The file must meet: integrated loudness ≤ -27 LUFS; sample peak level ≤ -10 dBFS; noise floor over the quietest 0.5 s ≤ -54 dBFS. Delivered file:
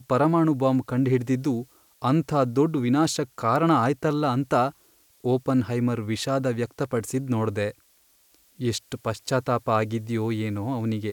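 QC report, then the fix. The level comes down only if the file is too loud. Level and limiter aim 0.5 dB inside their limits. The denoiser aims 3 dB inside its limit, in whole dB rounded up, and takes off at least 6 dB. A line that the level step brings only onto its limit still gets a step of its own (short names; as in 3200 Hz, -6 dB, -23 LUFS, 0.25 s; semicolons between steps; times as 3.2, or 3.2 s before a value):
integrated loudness -25.0 LUFS: fail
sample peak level -9.5 dBFS: fail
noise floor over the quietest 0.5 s -61 dBFS: OK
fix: gain -2.5 dB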